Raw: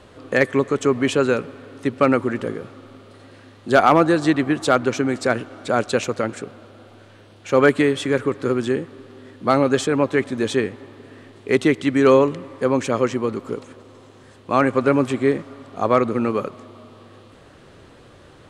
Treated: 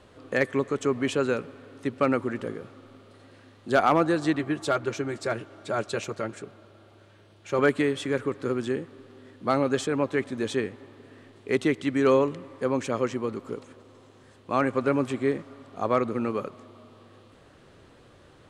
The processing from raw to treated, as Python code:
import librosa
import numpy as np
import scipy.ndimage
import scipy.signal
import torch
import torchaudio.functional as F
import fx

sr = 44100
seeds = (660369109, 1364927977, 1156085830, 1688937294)

y = fx.notch_comb(x, sr, f0_hz=250.0, at=(4.39, 7.59))
y = y * 10.0 ** (-7.0 / 20.0)